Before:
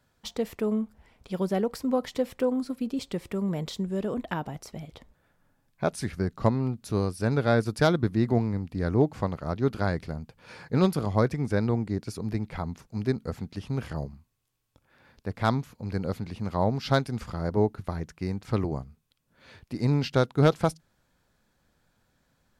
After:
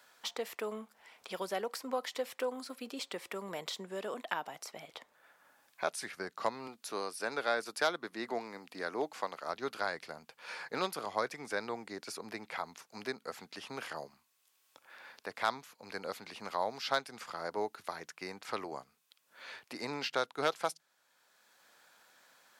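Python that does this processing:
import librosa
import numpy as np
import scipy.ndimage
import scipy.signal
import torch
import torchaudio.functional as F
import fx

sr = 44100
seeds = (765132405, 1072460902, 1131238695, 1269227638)

y = fx.highpass(x, sr, hz=180.0, slope=12, at=(6.67, 9.49))
y = scipy.signal.sosfilt(scipy.signal.bessel(2, 910.0, 'highpass', norm='mag', fs=sr, output='sos'), y)
y = fx.band_squash(y, sr, depth_pct=40)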